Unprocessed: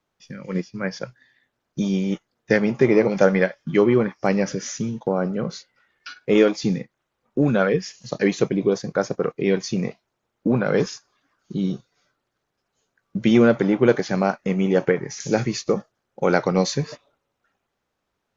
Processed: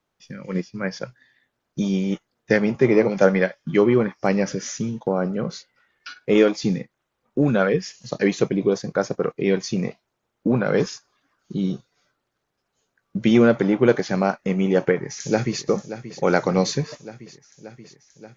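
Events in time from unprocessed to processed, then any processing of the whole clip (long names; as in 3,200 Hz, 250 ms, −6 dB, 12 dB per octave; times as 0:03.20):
0:02.75–0:03.64: multiband upward and downward expander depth 40%
0:14.94–0:15.64: delay throw 580 ms, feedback 75%, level −12.5 dB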